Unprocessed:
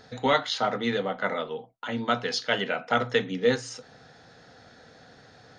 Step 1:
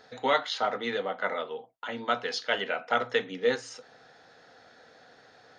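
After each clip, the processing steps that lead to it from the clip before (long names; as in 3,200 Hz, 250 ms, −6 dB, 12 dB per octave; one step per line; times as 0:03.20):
bass and treble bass −13 dB, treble −4 dB
level −1.5 dB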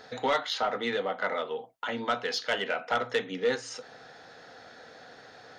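in parallel at +3 dB: downward compressor, threshold −37 dBFS, peak gain reduction 17 dB
on the sum: soft clipping −15.5 dBFS, distortion −17 dB
level −2 dB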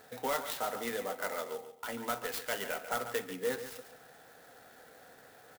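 on a send: repeating echo 141 ms, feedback 25%, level −11 dB
on the sum: converter with an unsteady clock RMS 0.048 ms
level −6.5 dB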